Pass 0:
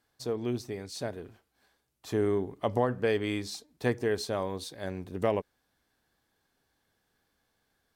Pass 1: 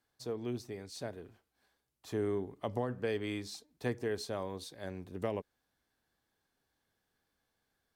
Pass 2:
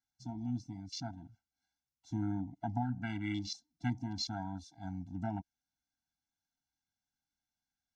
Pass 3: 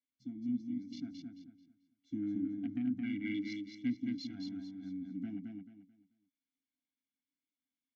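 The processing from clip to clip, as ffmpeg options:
-filter_complex "[0:a]acrossover=split=390|3000[a][b][c];[b]acompressor=threshold=-28dB:ratio=6[d];[a][d][c]amix=inputs=3:normalize=0,volume=-6dB"
-af "lowpass=f=6.1k:t=q:w=4.4,afwtdn=0.00708,afftfilt=real='re*eq(mod(floor(b*sr/1024/330),2),0)':imag='im*eq(mod(floor(b*sr/1024/330),2),0)':win_size=1024:overlap=0.75,volume=4dB"
-filter_complex "[0:a]aeval=exprs='0.0841*(cos(1*acos(clip(val(0)/0.0841,-1,1)))-cos(1*PI/2))+0.015*(cos(5*acos(clip(val(0)/0.0841,-1,1)))-cos(5*PI/2))+0.00944*(cos(7*acos(clip(val(0)/0.0841,-1,1)))-cos(7*PI/2))':c=same,asplit=3[a][b][c];[a]bandpass=f=270:t=q:w=8,volume=0dB[d];[b]bandpass=f=2.29k:t=q:w=8,volume=-6dB[e];[c]bandpass=f=3.01k:t=q:w=8,volume=-9dB[f];[d][e][f]amix=inputs=3:normalize=0,asplit=2[g][h];[h]aecho=0:1:219|438|657|876:0.631|0.177|0.0495|0.0139[i];[g][i]amix=inputs=2:normalize=0,volume=6.5dB"

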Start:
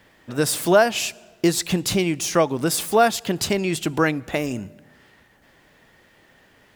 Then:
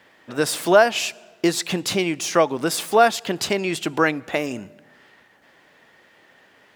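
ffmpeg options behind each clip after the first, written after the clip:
-af "highpass=f=390:p=1,highshelf=f=6.6k:g=-9,volume=3dB"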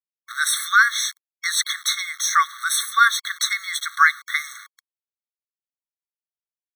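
-af "aeval=exprs='val(0)*gte(abs(val(0)),0.0158)':c=same,afftfilt=real='re*eq(mod(floor(b*sr/1024/1100),2),1)':imag='im*eq(mod(floor(b*sr/1024/1100),2),1)':win_size=1024:overlap=0.75,volume=7.5dB"

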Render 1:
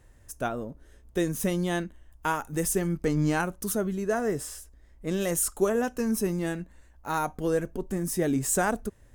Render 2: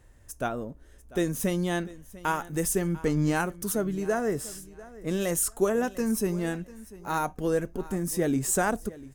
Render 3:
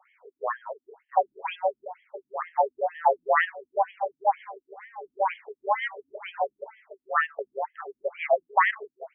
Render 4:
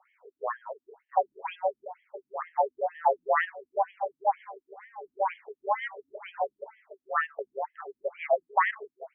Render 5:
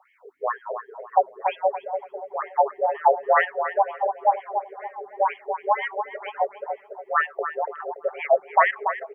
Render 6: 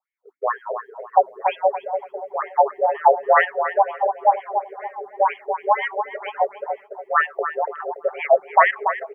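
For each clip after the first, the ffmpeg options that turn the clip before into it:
-af "aecho=1:1:695|1390:0.112|0.0247"
-af "afreqshift=390,afftfilt=real='re*between(b*sr/1024,200*pow(2400/200,0.5+0.5*sin(2*PI*2.1*pts/sr))/1.41,200*pow(2400/200,0.5+0.5*sin(2*PI*2.1*pts/sr))*1.41)':imag='im*between(b*sr/1024,200*pow(2400/200,0.5+0.5*sin(2*PI*2.1*pts/sr))/1.41,200*pow(2400/200,0.5+0.5*sin(2*PI*2.1*pts/sr))*1.41)':win_size=1024:overlap=0.75,volume=8dB"
-af "highshelf=f=2.9k:g=-8.5,volume=-2dB"
-filter_complex "[0:a]asplit=2[a][b];[b]adelay=286,lowpass=f=1.1k:p=1,volume=-5.5dB,asplit=2[c][d];[d]adelay=286,lowpass=f=1.1k:p=1,volume=0.42,asplit=2[e][f];[f]adelay=286,lowpass=f=1.1k:p=1,volume=0.42,asplit=2[g][h];[h]adelay=286,lowpass=f=1.1k:p=1,volume=0.42,asplit=2[i][j];[j]adelay=286,lowpass=f=1.1k:p=1,volume=0.42[k];[a][c][e][g][i][k]amix=inputs=6:normalize=0,volume=6dB"
-af "agate=range=-33dB:threshold=-38dB:ratio=3:detection=peak,volume=3.5dB"

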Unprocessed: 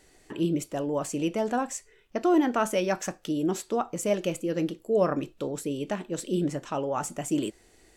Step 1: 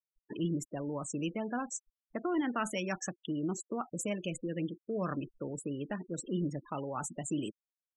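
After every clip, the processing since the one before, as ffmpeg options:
-filter_complex "[0:a]afftfilt=real='re*gte(hypot(re,im),0.0224)':imag='im*gte(hypot(re,im),0.0224)':win_size=1024:overlap=0.75,acrossover=split=270|1100[a][b][c];[b]acompressor=threshold=-38dB:ratio=6[d];[a][d][c]amix=inputs=3:normalize=0,volume=-3dB"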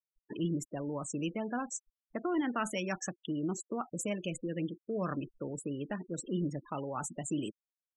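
-af anull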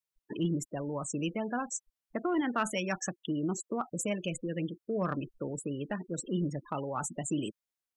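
-af "adynamicequalizer=threshold=0.00447:dfrequency=300:dqfactor=1.7:tfrequency=300:tqfactor=1.7:attack=5:release=100:ratio=0.375:range=2:mode=cutabove:tftype=bell,aeval=exprs='0.0891*(cos(1*acos(clip(val(0)/0.0891,-1,1)))-cos(1*PI/2))+0.00794*(cos(3*acos(clip(val(0)/0.0891,-1,1)))-cos(3*PI/2))+0.00178*(cos(5*acos(clip(val(0)/0.0891,-1,1)))-cos(5*PI/2))':c=same,volume=4.5dB"

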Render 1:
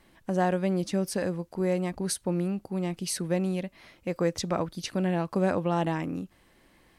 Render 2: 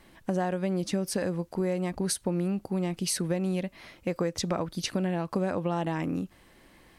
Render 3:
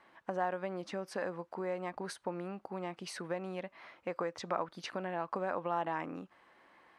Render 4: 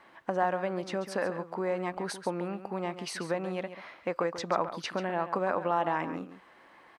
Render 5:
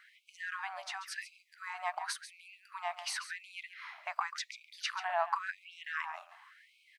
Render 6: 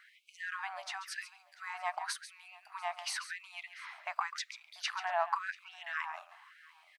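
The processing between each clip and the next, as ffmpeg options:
-af "acompressor=threshold=-29dB:ratio=5,volume=4dB"
-af "bandpass=f=1.1k:t=q:w=1.2:csg=0,volume=1dB"
-af "aecho=1:1:138:0.266,volume=6dB"
-af "afftfilt=real='re*gte(b*sr/1024,570*pow(2200/570,0.5+0.5*sin(2*PI*0.92*pts/sr)))':imag='im*gte(b*sr/1024,570*pow(2200/570,0.5+0.5*sin(2*PI*0.92*pts/sr)))':win_size=1024:overlap=0.75,volume=1dB"
-af "aecho=1:1:689:0.0708"

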